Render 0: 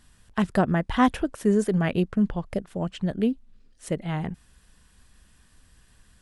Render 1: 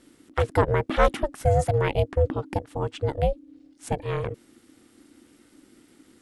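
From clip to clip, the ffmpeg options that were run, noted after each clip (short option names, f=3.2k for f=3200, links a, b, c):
-af "aeval=exprs='val(0)*sin(2*PI*290*n/s)':c=same,volume=3.5dB"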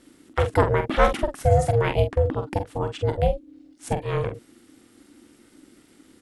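-filter_complex "[0:a]asplit=2[a][b];[b]adelay=45,volume=-8dB[c];[a][c]amix=inputs=2:normalize=0,volume=1.5dB"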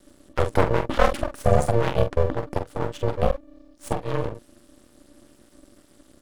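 -af "equalizer=f=2.2k:t=o:w=0.8:g=-6,aeval=exprs='max(val(0),0)':c=same,volume=3.5dB"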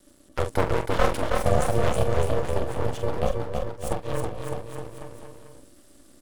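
-filter_complex "[0:a]highshelf=f=5.3k:g=7,asplit=2[a][b];[b]aecho=0:1:320|608|867.2|1100|1310:0.631|0.398|0.251|0.158|0.1[c];[a][c]amix=inputs=2:normalize=0,volume=-4dB"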